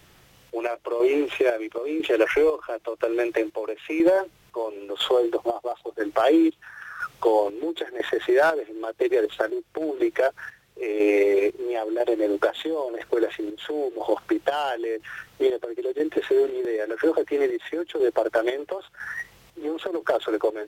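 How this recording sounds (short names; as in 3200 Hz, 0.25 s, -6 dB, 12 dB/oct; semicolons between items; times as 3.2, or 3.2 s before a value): chopped level 1 Hz, depth 60%, duty 50%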